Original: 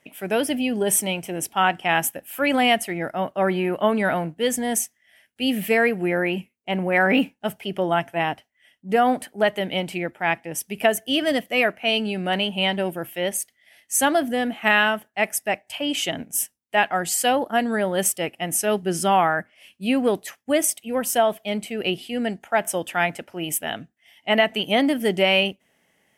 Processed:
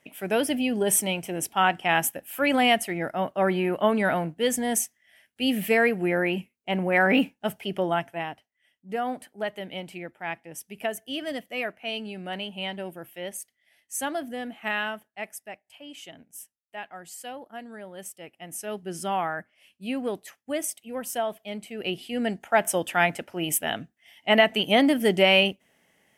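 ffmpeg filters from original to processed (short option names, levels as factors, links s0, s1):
-af "volume=6.68,afade=t=out:st=7.75:d=0.55:silence=0.375837,afade=t=out:st=14.9:d=0.72:silence=0.398107,afade=t=in:st=18.14:d=0.99:silence=0.334965,afade=t=in:st=21.67:d=0.82:silence=0.354813"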